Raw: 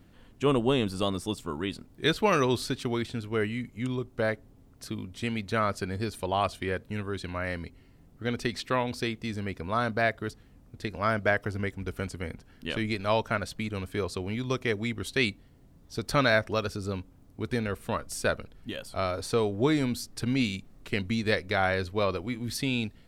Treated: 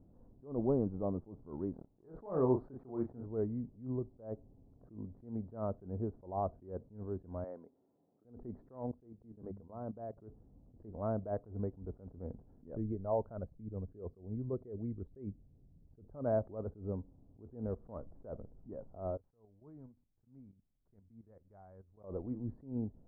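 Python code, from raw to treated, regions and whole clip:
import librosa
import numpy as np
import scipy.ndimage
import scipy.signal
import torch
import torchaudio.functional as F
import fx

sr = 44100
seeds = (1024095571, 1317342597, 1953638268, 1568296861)

y = fx.chain(x, sr, fx.low_shelf(hz=450.0, db=-9.0),
    fx.leveller(passes=2),
    fx.doubler(ms=31.0, db=-7.0), at=(1.73, 3.26))
y = fx.chain(y, sr, fx.highpass(hz=280.0, slope=12),
    fx.low_shelf(hz=380.0, db=-8.0), at=(7.44, 8.25))
y = fx.chain(y, sr, fx.level_steps(step_db=17),
    fx.hum_notches(base_hz=50, count=4), at=(8.91, 10.17))
y = fx.chain(y, sr, fx.envelope_sharpen(power=1.5),
    fx.peak_eq(hz=270.0, db=-3.5, octaves=0.89), at=(12.68, 16.26))
y = fx.chain(y, sr, fx.tone_stack(knobs='5-5-5'),
    fx.level_steps(step_db=15), at=(19.17, 22.04))
y = scipy.signal.sosfilt(scipy.signal.cheby2(4, 60, 2700.0, 'lowpass', fs=sr, output='sos'), y)
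y = fx.attack_slew(y, sr, db_per_s=150.0)
y = y * 10.0 ** (-5.0 / 20.0)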